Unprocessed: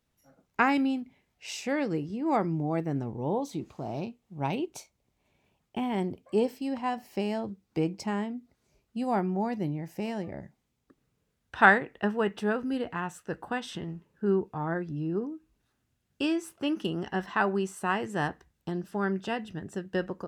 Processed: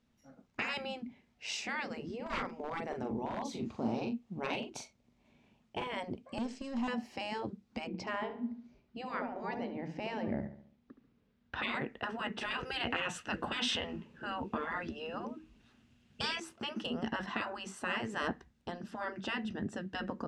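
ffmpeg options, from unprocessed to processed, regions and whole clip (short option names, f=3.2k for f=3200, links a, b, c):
-filter_complex "[0:a]asettb=1/sr,asplit=3[a][b][c];[a]atrim=end=2.164[d];[b]atrim=start=2.16:end=5.87,asetpts=PTS-STARTPTS,afade=t=in:d=0.004:c=qsin,afade=t=out:st=3.706:d=0.004:c=qsin,asplit=2[e][f];[f]adelay=41,volume=-6dB[g];[e][g]amix=inputs=2:normalize=0,atrim=end_sample=163611,volume=22dB,asoftclip=hard,volume=-22dB[h];[c]atrim=start=5.866[i];[d][h]acrossfade=d=0.004:c1=hsin:c2=qsin[j];[j][i]acrossfade=d=0.004:c1=qsin:c2=hsin,asettb=1/sr,asplit=3[k][l][m];[k]atrim=end=6.384[n];[l]atrim=start=6.38:end=6.88,asetpts=PTS-STARTPTS,afade=t=in:d=0.004:c=qsin,afade=t=out:st=0.496:d=0.004:c=qsin,aeval=exprs='if(lt(val(0),0),0.251*val(0),val(0))':c=same,acompressor=threshold=-35dB:ratio=3:attack=3.2:release=140:knee=1:detection=peak,lowpass=f=7.3k:t=q:w=3.4[o];[m]atrim=start=6.876[p];[n][o]acrossfade=d=0.004:c1=hsin:c2=qsin[q];[q][p]acrossfade=d=0.004:c1=qsin:c2=hsin,asettb=1/sr,asplit=3[r][s][t];[r]atrim=end=7.874[u];[s]atrim=start=7.87:end=11.75,asetpts=PTS-STARTPTS,afade=t=in:d=0.004:c=qsin,afade=t=out:st=3.876:d=0.004:c=qsin,lowpass=4.3k,asplit=2[v][w];[w]adelay=71,lowpass=f=3.1k:p=1,volume=-11dB,asplit=2[x][y];[y]adelay=71,lowpass=f=3.1k:p=1,volume=0.46,asplit=2[z][aa];[aa]adelay=71,lowpass=f=3.1k:p=1,volume=0.46,asplit=2[ab][ac];[ac]adelay=71,lowpass=f=3.1k:p=1,volume=0.46,asplit=2[ad][ae];[ae]adelay=71,lowpass=f=3.1k:p=1,volume=0.46[af];[v][x][z][ab][ad][af]amix=inputs=6:normalize=0,atrim=end_sample=171108[ag];[t]atrim=start=11.746[ah];[u][ag]acrossfade=d=0.004:c1=hsin:c2=qsin[ai];[ai][ah]acrossfade=d=0.004:c1=qsin:c2=hsin,asettb=1/sr,asplit=3[aj][ak][al];[aj]atrim=end=12.414[am];[ak]atrim=start=12.41:end=16.4,asetpts=PTS-STARTPTS,afade=t=in:d=0.004:c=qsin,afade=t=out:st=3.986:d=0.004:c=qsin,equalizer=f=2.8k:w=2.3:g=7.5,acontrast=79[an];[al]atrim=start=16.396[ao];[am][an]acrossfade=d=0.004:c1=hsin:c2=qsin[ap];[ap][ao]acrossfade=d=0.004:c1=qsin:c2=hsin,afftfilt=real='re*lt(hypot(re,im),0.112)':imag='im*lt(hypot(re,im),0.112)':win_size=1024:overlap=0.75,lowpass=6k,equalizer=f=230:t=o:w=0.33:g=12,volume=1dB"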